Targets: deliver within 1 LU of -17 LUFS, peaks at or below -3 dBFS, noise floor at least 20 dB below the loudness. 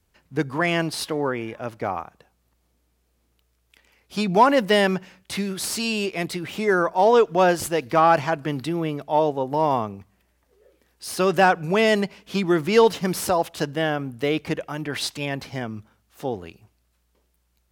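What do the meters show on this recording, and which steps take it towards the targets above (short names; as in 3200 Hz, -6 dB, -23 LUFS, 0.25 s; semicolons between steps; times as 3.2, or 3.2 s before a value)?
loudness -22.5 LUFS; peak -5.0 dBFS; loudness target -17.0 LUFS
-> gain +5.5 dB; limiter -3 dBFS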